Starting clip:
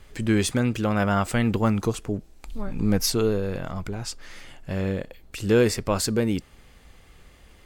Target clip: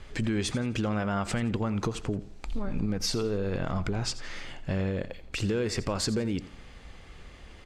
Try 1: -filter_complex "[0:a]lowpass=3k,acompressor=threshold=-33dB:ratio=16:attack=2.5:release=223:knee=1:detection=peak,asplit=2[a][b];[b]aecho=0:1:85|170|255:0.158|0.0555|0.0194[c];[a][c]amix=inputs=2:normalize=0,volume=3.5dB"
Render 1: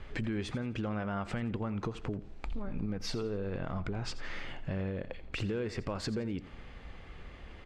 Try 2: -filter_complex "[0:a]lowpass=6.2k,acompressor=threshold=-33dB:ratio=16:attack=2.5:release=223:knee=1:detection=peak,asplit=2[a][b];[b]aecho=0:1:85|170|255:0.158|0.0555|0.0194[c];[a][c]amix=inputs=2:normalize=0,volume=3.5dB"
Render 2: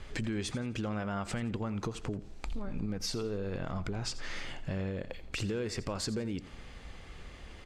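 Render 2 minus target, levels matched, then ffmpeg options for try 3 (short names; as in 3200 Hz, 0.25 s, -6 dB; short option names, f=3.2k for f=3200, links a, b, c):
compressor: peak gain reduction +6 dB
-filter_complex "[0:a]lowpass=6.2k,acompressor=threshold=-26.5dB:ratio=16:attack=2.5:release=223:knee=1:detection=peak,asplit=2[a][b];[b]aecho=0:1:85|170|255:0.158|0.0555|0.0194[c];[a][c]amix=inputs=2:normalize=0,volume=3.5dB"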